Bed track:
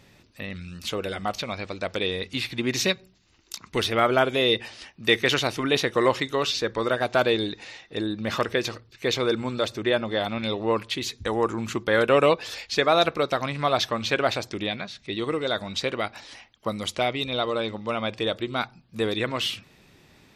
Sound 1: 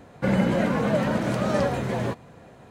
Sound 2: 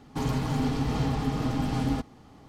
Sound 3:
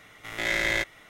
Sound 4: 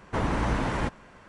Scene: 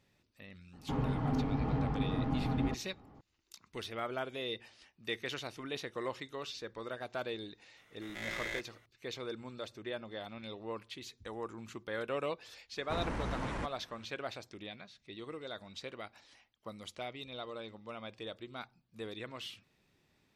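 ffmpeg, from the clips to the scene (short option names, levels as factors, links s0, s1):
-filter_complex "[0:a]volume=0.133[s0];[2:a]lowpass=1700[s1];[4:a]asoftclip=type=tanh:threshold=0.0794[s2];[s1]atrim=end=2.48,asetpts=PTS-STARTPTS,volume=0.531,afade=t=in:d=0.004:c=hsin,afade=t=out:st=2.476:d=0.004:c=hsin,adelay=730[s3];[3:a]atrim=end=1.09,asetpts=PTS-STARTPTS,volume=0.2,afade=t=in:d=0.004:c=hsin,afade=t=out:st=1.086:d=0.004:c=hsin,adelay=7770[s4];[s2]atrim=end=1.28,asetpts=PTS-STARTPTS,volume=0.376,afade=t=in:d=0.004:c=hsin,afade=t=out:st=1.276:d=0.004:c=hsin,adelay=12770[s5];[s0][s3][s4][s5]amix=inputs=4:normalize=0"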